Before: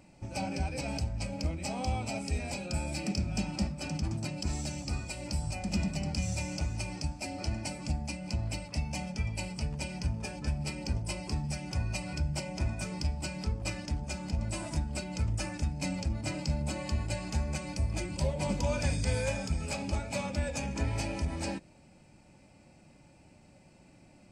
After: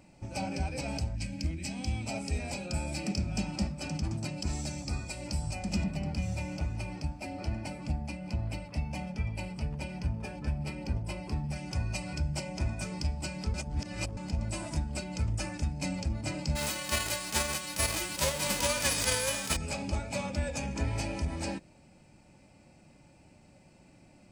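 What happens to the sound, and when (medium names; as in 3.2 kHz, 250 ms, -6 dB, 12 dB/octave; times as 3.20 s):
1.16–2.06 s: time-frequency box 380–1500 Hz -11 dB
4.64–5.21 s: band-stop 2.9 kHz
5.83–11.56 s: peaking EQ 6.9 kHz -10.5 dB 1.5 oct
13.54–14.17 s: reverse
16.55–19.55 s: formants flattened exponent 0.3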